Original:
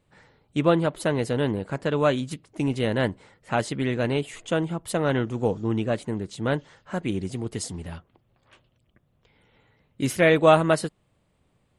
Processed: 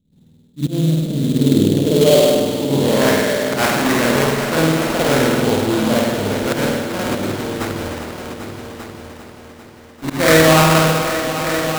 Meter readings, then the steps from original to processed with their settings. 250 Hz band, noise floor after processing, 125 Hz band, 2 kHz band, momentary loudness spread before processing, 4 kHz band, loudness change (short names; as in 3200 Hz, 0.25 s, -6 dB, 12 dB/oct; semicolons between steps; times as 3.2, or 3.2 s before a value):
+10.0 dB, -43 dBFS, +8.5 dB, +10.5 dB, 12 LU, +14.5 dB, +9.0 dB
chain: high shelf 2700 Hz +9 dB; notches 60/120/180 Hz; spring tank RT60 1.3 s, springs 50 ms, chirp 70 ms, DRR -7.5 dB; in parallel at -2 dB: limiter -8 dBFS, peak gain reduction 9.5 dB; on the sum: auto swell 0.102 s; low-pass sweep 210 Hz -> 4400 Hz, 1.19–4.39; sample-rate reducer 3800 Hz, jitter 20%; on a send: multi-head echo 0.396 s, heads all three, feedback 42%, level -12 dB; on the sum: running maximum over 3 samples; gain -5 dB